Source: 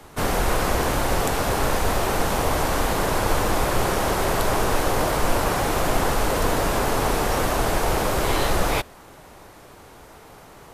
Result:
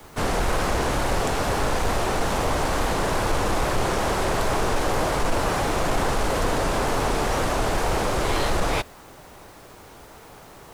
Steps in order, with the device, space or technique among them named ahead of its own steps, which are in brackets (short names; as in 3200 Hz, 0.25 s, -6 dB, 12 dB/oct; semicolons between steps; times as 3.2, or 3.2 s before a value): compact cassette (soft clip -13.5 dBFS, distortion -19 dB; LPF 9400 Hz 12 dB/oct; wow and flutter; white noise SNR 33 dB)